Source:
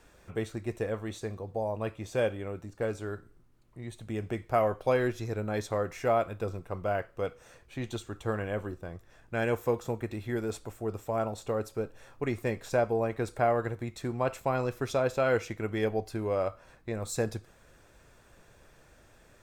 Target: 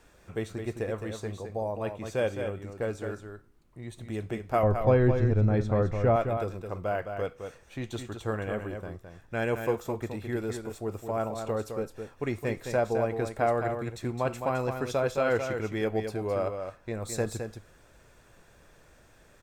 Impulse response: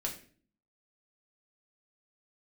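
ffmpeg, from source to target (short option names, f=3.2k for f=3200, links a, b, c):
-filter_complex "[0:a]asettb=1/sr,asplit=3[a][b][c];[a]atrim=end=4.634[d];[b]atrim=start=4.63:end=6.16,asetpts=PTS-STARTPTS,afade=t=in:d=0.004:c=qsin,afade=t=out:st=1.526:d=0.004:c=qsin,aemphasis=mode=reproduction:type=riaa[e];[c]atrim=start=6.156[f];[d][e]acrossfade=d=0.004:c1=hsin:c2=qsin[g];[g][f]acrossfade=d=0.004:c1=qsin:c2=hsin,aecho=1:1:213:0.447"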